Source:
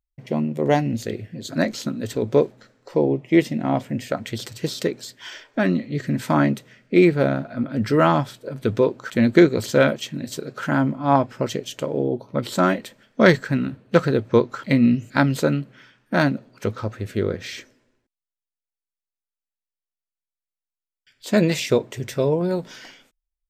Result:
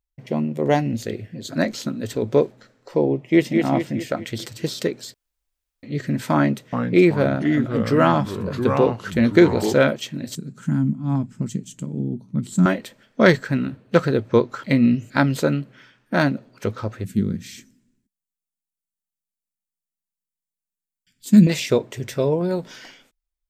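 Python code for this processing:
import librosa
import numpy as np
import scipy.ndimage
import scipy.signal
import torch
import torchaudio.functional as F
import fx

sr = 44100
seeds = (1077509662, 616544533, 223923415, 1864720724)

y = fx.echo_throw(x, sr, start_s=3.17, length_s=0.41, ms=210, feedback_pct=50, wet_db=-4.5)
y = fx.echo_pitch(y, sr, ms=375, semitones=-3, count=2, db_per_echo=-6.0, at=(6.35, 9.74))
y = fx.curve_eq(y, sr, hz=(120.0, 180.0, 540.0, 830.0, 1300.0, 3300.0, 5200.0, 7600.0, 14000.0), db=(0, 10, -21, -17, -16, -13, -11, 3, -11), at=(10.35, 12.66))
y = fx.curve_eq(y, sr, hz=(110.0, 200.0, 370.0, 540.0, 5300.0, 7600.0), db=(0, 11, -8, -19, -4, 4), at=(17.04, 21.47))
y = fx.edit(y, sr, fx.room_tone_fill(start_s=5.14, length_s=0.69), tone=tone)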